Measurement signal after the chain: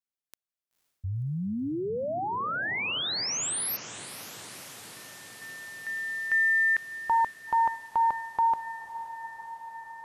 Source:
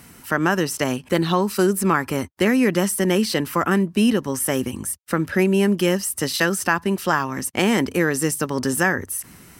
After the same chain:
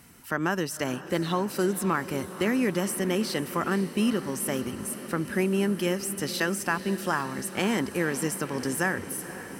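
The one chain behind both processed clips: diffused feedback echo 0.509 s, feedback 75%, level -14 dB; gain -7.5 dB

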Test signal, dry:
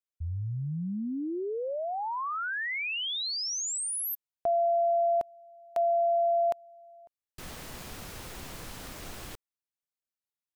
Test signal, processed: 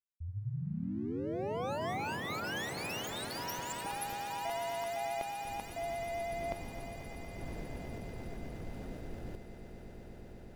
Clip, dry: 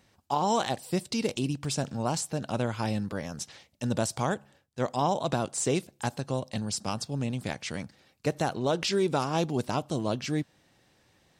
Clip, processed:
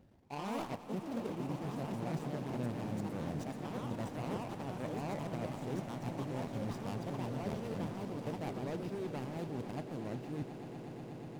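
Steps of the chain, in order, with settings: median filter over 41 samples; reverse; compressor 8:1, threshold -43 dBFS; reverse; vibrato 9.6 Hz 16 cents; swelling echo 0.121 s, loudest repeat 8, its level -15 dB; echoes that change speed 0.114 s, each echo +3 st, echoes 2; gain +4 dB

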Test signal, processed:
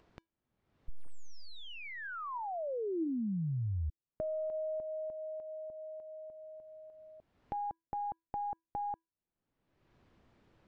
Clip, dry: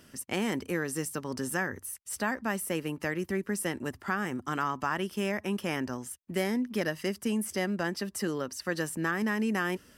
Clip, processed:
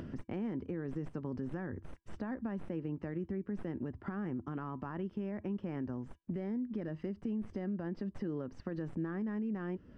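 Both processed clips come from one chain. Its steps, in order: tracing distortion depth 0.032 ms; low shelf 480 Hz +12 dB; upward compressor, threshold -37 dBFS; limiter -19 dBFS; compressor 2.5:1, threshold -40 dBFS; tape spacing loss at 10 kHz 38 dB; resonator 330 Hz, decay 0.25 s, harmonics odd, mix 40%; gain +5 dB

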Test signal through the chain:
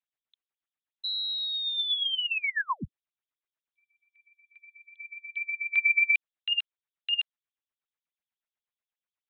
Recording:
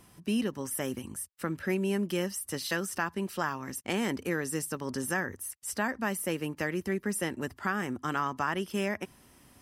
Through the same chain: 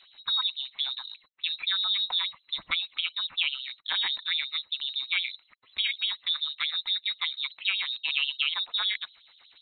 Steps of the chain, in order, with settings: LFO low-pass sine 8.2 Hz 530–3100 Hz; inverted band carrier 4000 Hz

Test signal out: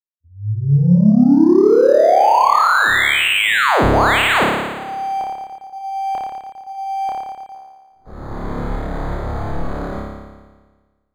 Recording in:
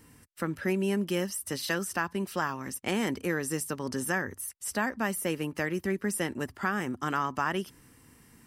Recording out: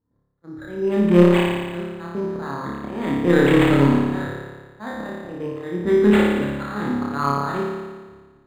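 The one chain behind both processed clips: Wiener smoothing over 15 samples; auto swell 0.655 s; gate -54 dBFS, range -22 dB; low-pass opened by the level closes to 1300 Hz, open at -30.5 dBFS; AGC gain up to 15 dB; soft clip -12 dBFS; on a send: flutter echo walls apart 4.9 m, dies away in 1.4 s; on the sum: decimation joined by straight lines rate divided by 8×

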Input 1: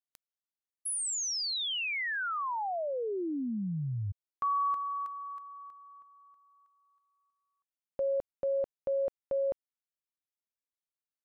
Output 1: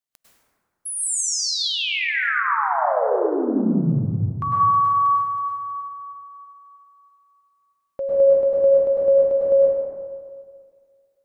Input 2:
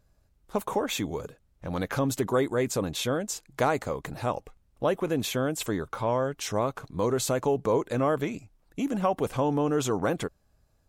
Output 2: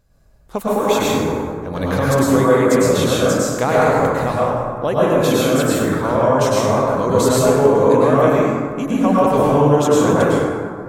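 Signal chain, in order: plate-style reverb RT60 2 s, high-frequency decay 0.4×, pre-delay 90 ms, DRR -7 dB; gain +4.5 dB

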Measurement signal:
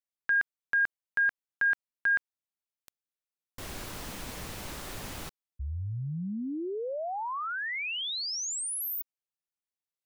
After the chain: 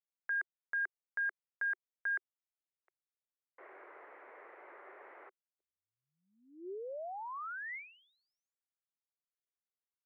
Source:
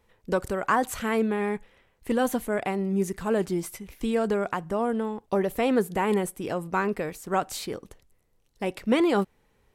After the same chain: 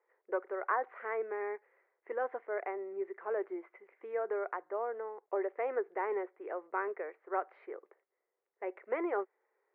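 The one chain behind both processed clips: Chebyshev band-pass 370–2100 Hz, order 4; gain -8 dB

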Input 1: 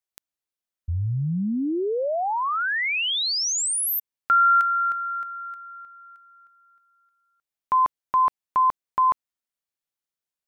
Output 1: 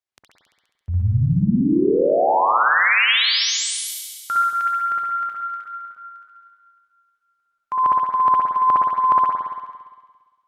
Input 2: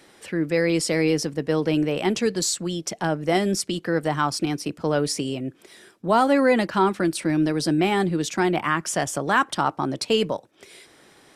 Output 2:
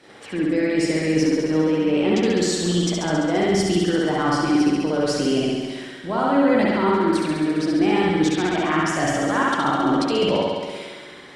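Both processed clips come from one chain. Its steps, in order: gate -53 dBFS, range -6 dB; HPF 69 Hz 12 dB/oct; dynamic EQ 310 Hz, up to +6 dB, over -38 dBFS, Q 3.5; reverse; compressor 16:1, threshold -26 dBFS; reverse; AM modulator 110 Hz, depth 15%; air absorption 64 m; on a send: thinning echo 68 ms, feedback 78%, high-pass 780 Hz, level -4 dB; on the sum: spring tank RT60 1.4 s, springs 57 ms, chirp 40 ms, DRR -3 dB; gain +7 dB; Opus 48 kbps 48000 Hz

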